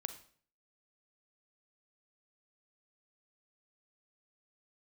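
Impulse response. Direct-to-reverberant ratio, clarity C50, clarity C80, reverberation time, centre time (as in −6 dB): 9.0 dB, 11.0 dB, 15.0 dB, 0.50 s, 8 ms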